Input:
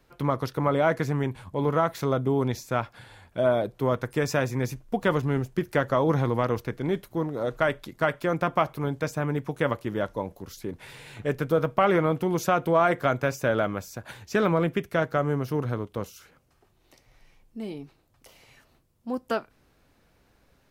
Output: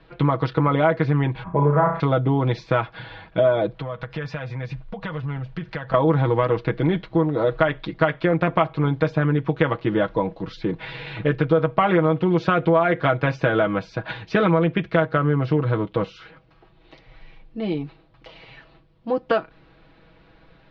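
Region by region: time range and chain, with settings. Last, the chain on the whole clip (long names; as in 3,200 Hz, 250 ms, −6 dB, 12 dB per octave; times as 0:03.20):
0:01.43–0:02.00: low-pass filter 1,900 Hz 24 dB per octave + comb filter 5 ms, depth 56% + flutter between parallel walls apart 5.9 metres, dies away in 0.41 s
0:03.74–0:05.94: parametric band 340 Hz −11.5 dB 0.66 octaves + downward compressor, threshold −38 dBFS
whole clip: Butterworth low-pass 4,100 Hz 36 dB per octave; comb filter 6.2 ms, depth 71%; downward compressor 3 to 1, threshold −26 dBFS; level +9 dB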